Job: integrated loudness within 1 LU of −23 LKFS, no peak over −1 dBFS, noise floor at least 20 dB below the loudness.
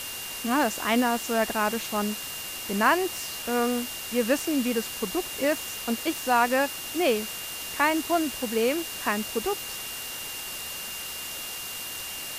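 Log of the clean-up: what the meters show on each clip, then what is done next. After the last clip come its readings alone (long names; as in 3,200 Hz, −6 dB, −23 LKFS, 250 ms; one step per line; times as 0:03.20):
interfering tone 2,800 Hz; level of the tone −39 dBFS; background noise floor −36 dBFS; target noise floor −47 dBFS; integrated loudness −27.0 LKFS; sample peak −9.0 dBFS; target loudness −23.0 LKFS
→ notch filter 2,800 Hz, Q 30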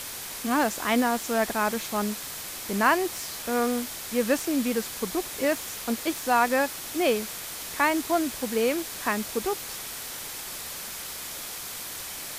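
interfering tone none found; background noise floor −37 dBFS; target noise floor −48 dBFS
→ noise reduction from a noise print 11 dB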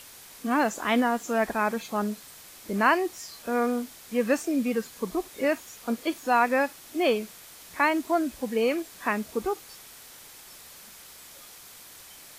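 background noise floor −48 dBFS; integrated loudness −27.0 LKFS; sample peak −9.0 dBFS; target loudness −23.0 LKFS
→ level +4 dB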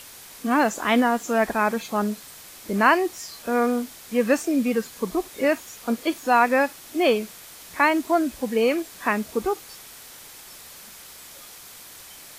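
integrated loudness −23.0 LKFS; sample peak −5.0 dBFS; background noise floor −44 dBFS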